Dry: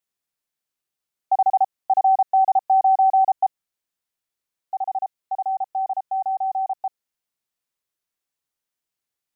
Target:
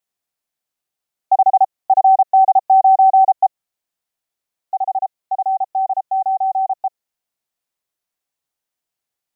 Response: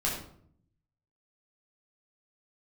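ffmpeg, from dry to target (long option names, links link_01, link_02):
-af "equalizer=frequency=710:width=2.5:gain=5,volume=1.5dB"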